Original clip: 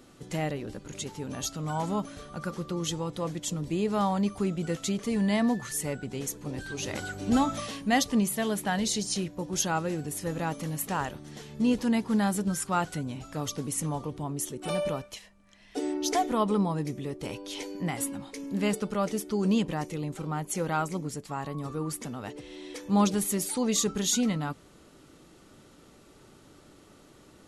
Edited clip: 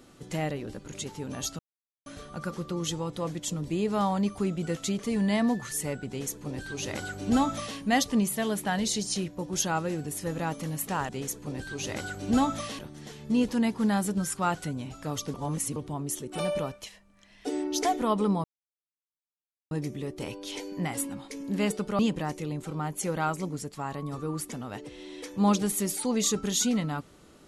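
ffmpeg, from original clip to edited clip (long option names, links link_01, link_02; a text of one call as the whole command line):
ffmpeg -i in.wav -filter_complex "[0:a]asplit=9[link_01][link_02][link_03][link_04][link_05][link_06][link_07][link_08][link_09];[link_01]atrim=end=1.59,asetpts=PTS-STARTPTS,afade=type=out:start_time=1.586:duration=0.004:curve=hsin[link_10];[link_02]atrim=start=1.59:end=2.06,asetpts=PTS-STARTPTS,volume=0[link_11];[link_03]atrim=start=2.06:end=11.092,asetpts=PTS-STARTPTS,afade=type=in:duration=0.004:curve=hsin[link_12];[link_04]atrim=start=6.078:end=7.782[link_13];[link_05]atrim=start=11.088:end=13.642[link_14];[link_06]atrim=start=13.638:end=14.062,asetpts=PTS-STARTPTS,areverse[link_15];[link_07]atrim=start=14.058:end=16.74,asetpts=PTS-STARTPTS,afade=type=out:start_time=2.678:duration=0.004:curve=hsin,apad=pad_dur=1.27[link_16];[link_08]atrim=start=16.74:end=19.022,asetpts=PTS-STARTPTS,afade=type=in:duration=0.004:curve=hsin[link_17];[link_09]atrim=start=19.508[link_18];[link_10][link_11][link_12]concat=n=3:v=0:a=1[link_19];[link_19][link_13]acrossfade=duration=0.004:curve1=hsin:curve2=hsin[link_20];[link_20][link_14]acrossfade=duration=0.004:curve1=hsin:curve2=hsin[link_21];[link_21][link_15]acrossfade=duration=0.004:curve1=hsin:curve2=hsin[link_22];[link_16][link_17]concat=n=2:v=0:a=1[link_23];[link_22][link_23]acrossfade=duration=0.004:curve1=hsin:curve2=hsin[link_24];[link_24][link_18]acrossfade=duration=0.004:curve1=hsin:curve2=hsin" out.wav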